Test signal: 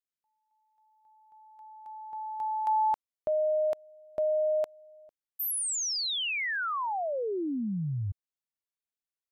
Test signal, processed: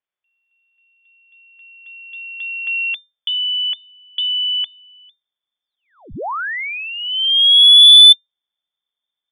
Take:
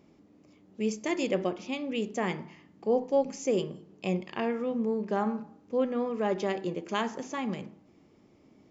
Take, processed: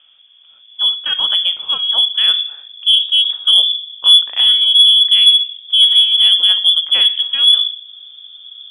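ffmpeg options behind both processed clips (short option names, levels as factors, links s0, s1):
-af "asubboost=boost=12:cutoff=240,lowpass=f=3100:t=q:w=0.5098,lowpass=f=3100:t=q:w=0.6013,lowpass=f=3100:t=q:w=0.9,lowpass=f=3100:t=q:w=2.563,afreqshift=-3600,acontrast=85,volume=1.26"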